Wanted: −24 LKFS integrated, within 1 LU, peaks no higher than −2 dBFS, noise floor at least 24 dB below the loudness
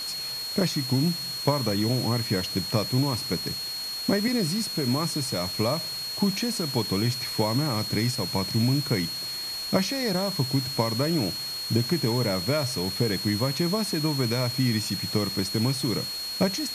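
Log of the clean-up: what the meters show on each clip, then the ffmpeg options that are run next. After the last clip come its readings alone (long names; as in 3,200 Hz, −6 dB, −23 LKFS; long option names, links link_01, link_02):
interfering tone 4,300 Hz; level of the tone −31 dBFS; background noise floor −33 dBFS; target noise floor −50 dBFS; integrated loudness −26.0 LKFS; sample peak −7.5 dBFS; target loudness −24.0 LKFS
→ -af "bandreject=frequency=4300:width=30"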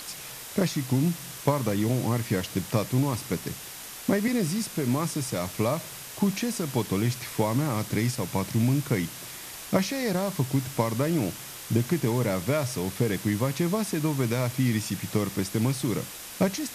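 interfering tone none found; background noise floor −41 dBFS; target noise floor −52 dBFS
→ -af "afftdn=noise_reduction=11:noise_floor=-41"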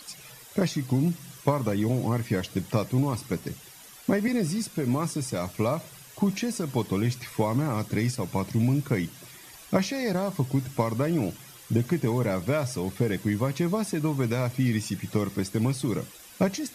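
background noise floor −48 dBFS; target noise floor −52 dBFS
→ -af "afftdn=noise_reduction=6:noise_floor=-48"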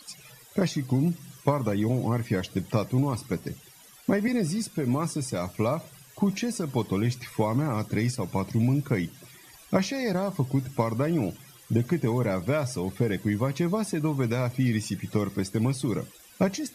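background noise floor −52 dBFS; integrated loudness −28.0 LKFS; sample peak −8.0 dBFS; target loudness −24.0 LKFS
→ -af "volume=4dB"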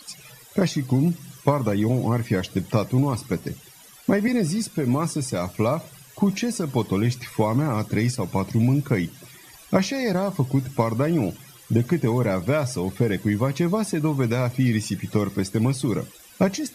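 integrated loudness −24.0 LKFS; sample peak −4.0 dBFS; background noise floor −48 dBFS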